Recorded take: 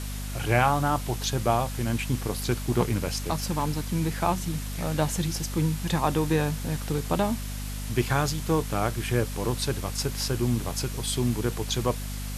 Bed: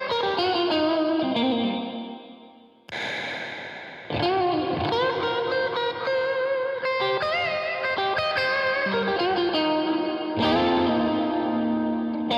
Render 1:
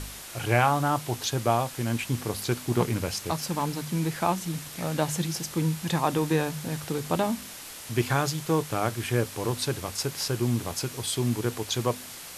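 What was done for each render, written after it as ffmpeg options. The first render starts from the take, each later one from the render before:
-af "bandreject=f=50:t=h:w=4,bandreject=f=100:t=h:w=4,bandreject=f=150:t=h:w=4,bandreject=f=200:t=h:w=4,bandreject=f=250:t=h:w=4"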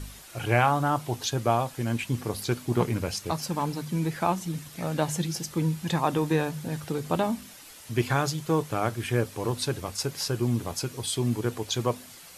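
-af "afftdn=nr=8:nf=-42"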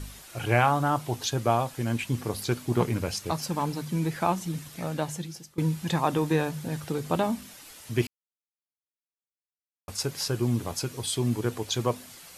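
-filter_complex "[0:a]asplit=4[a][b][c][d];[a]atrim=end=5.58,asetpts=PTS-STARTPTS,afade=t=out:st=4.7:d=0.88:silence=0.0891251[e];[b]atrim=start=5.58:end=8.07,asetpts=PTS-STARTPTS,afade=t=in:d=0.004:c=hsin:silence=0.0891251,afade=t=out:st=2.486:d=0.004:c=hsin[f];[c]atrim=start=8.07:end=9.88,asetpts=PTS-STARTPTS,volume=0[g];[d]atrim=start=9.88,asetpts=PTS-STARTPTS,afade=t=in:d=0.004:c=hsin[h];[e][f][g][h]concat=n=4:v=0:a=1"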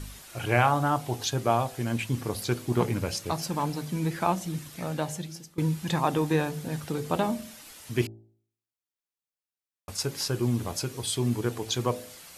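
-af "bandreject=f=55.7:t=h:w=4,bandreject=f=111.4:t=h:w=4,bandreject=f=167.1:t=h:w=4,bandreject=f=222.8:t=h:w=4,bandreject=f=278.5:t=h:w=4,bandreject=f=334.2:t=h:w=4,bandreject=f=389.9:t=h:w=4,bandreject=f=445.6:t=h:w=4,bandreject=f=501.3:t=h:w=4,bandreject=f=557:t=h:w=4,bandreject=f=612.7:t=h:w=4,bandreject=f=668.4:t=h:w=4,bandreject=f=724.1:t=h:w=4,bandreject=f=779.8:t=h:w=4,bandreject=f=835.5:t=h:w=4"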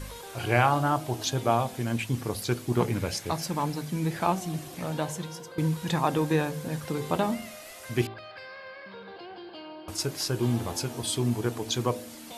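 -filter_complex "[1:a]volume=-20dB[a];[0:a][a]amix=inputs=2:normalize=0"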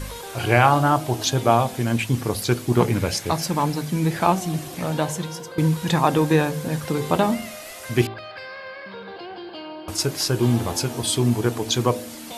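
-af "volume=7dB,alimiter=limit=-2dB:level=0:latency=1"

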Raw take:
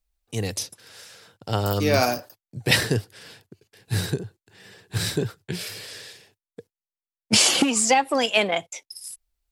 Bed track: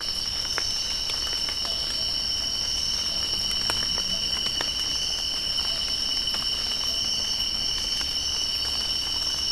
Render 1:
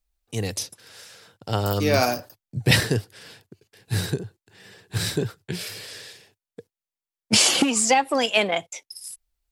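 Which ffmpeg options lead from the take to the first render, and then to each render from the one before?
-filter_complex "[0:a]asettb=1/sr,asplit=3[a][b][c];[a]atrim=end=2.194[d];[b]atrim=start=2.19:end=2.8,asetpts=PTS-STARTPTS,afade=t=in:d=0.004:c=qsin,afade=t=out:st=0.606:d=0.004:c=qsin,bass=f=250:g=7,treble=f=4k:g=0[e];[c]atrim=start=2.796[f];[d][e]acrossfade=d=0.004:c1=hsin:c2=qsin[g];[g][f]acrossfade=d=0.004:c1=qsin:c2=hsin"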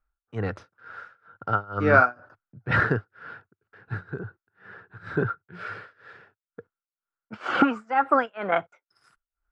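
-af "tremolo=f=2.1:d=0.96,lowpass=f=1.4k:t=q:w=9.7"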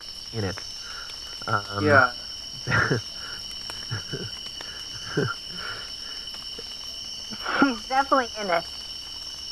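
-filter_complex "[1:a]volume=-9.5dB[a];[0:a][a]amix=inputs=2:normalize=0"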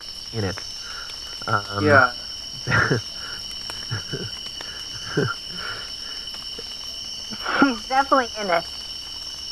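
-af "volume=3dB,alimiter=limit=-2dB:level=0:latency=1"

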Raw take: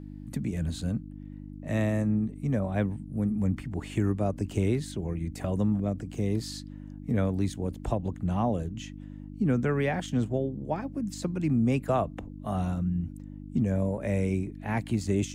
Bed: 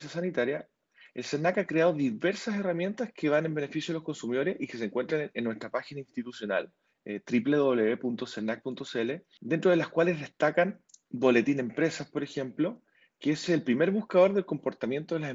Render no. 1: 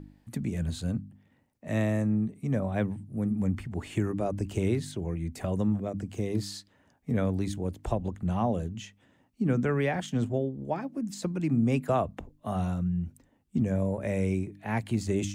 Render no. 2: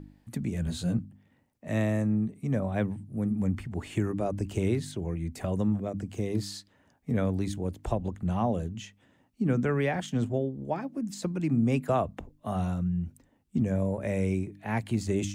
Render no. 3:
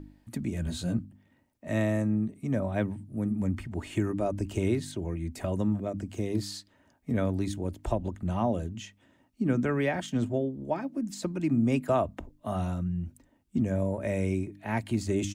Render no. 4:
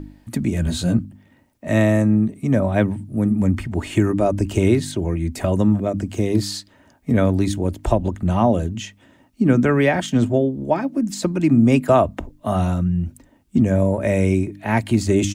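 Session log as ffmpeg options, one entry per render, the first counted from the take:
-af "bandreject=f=50:t=h:w=4,bandreject=f=100:t=h:w=4,bandreject=f=150:t=h:w=4,bandreject=f=200:t=h:w=4,bandreject=f=250:t=h:w=4,bandreject=f=300:t=h:w=4"
-filter_complex "[0:a]asettb=1/sr,asplit=3[a][b][c];[a]atrim=end=0.654[d];[b]atrim=start=0.65:end=1.05,asetpts=PTS-STARTPTS,afade=t=in:d=0.004:c=qsin,afade=t=out:st=0.396:d=0.004:c=qsin,asplit=2[e][f];[f]adelay=17,volume=-2dB[g];[e][g]amix=inputs=2:normalize=0,atrim=end_sample=17640[h];[c]atrim=start=1.046[i];[d][h]acrossfade=d=0.004:c1=hsin:c2=qsin[j];[j][i]acrossfade=d=0.004:c1=qsin:c2=hsin"
-af "aecho=1:1:3.2:0.31"
-af "volume=11dB"

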